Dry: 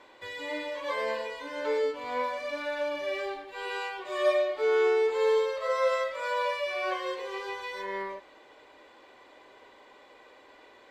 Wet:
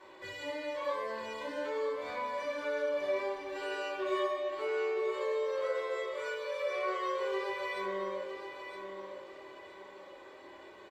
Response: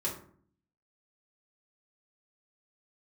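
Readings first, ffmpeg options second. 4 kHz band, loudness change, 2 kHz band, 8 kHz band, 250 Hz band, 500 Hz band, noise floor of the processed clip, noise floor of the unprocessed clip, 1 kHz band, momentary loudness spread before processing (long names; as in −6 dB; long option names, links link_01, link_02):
−5.5 dB, −5.5 dB, −5.0 dB, can't be measured, −1.5 dB, −5.0 dB, −52 dBFS, −56 dBFS, −4.5 dB, 11 LU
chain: -filter_complex "[0:a]acompressor=threshold=-35dB:ratio=4,aecho=1:1:966|1932|2898|3864:0.398|0.127|0.0408|0.013[link_01];[1:a]atrim=start_sample=2205[link_02];[link_01][link_02]afir=irnorm=-1:irlink=0,volume=-3.5dB"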